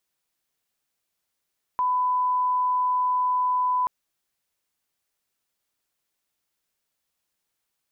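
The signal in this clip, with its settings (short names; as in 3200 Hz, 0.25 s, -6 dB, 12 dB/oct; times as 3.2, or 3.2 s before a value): line-up tone -20 dBFS 2.08 s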